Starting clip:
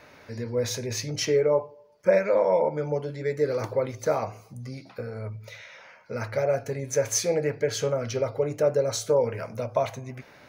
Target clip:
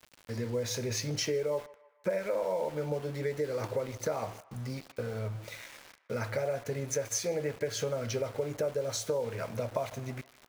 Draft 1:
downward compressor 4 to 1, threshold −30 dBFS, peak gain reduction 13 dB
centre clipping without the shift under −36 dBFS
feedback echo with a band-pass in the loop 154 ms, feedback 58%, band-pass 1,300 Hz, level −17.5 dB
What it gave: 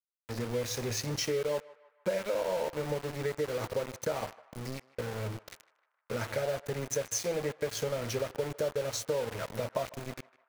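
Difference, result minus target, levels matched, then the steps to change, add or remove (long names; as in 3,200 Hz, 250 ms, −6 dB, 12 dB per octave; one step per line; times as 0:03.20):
centre clipping without the shift: distortion +10 dB
change: centre clipping without the shift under −44 dBFS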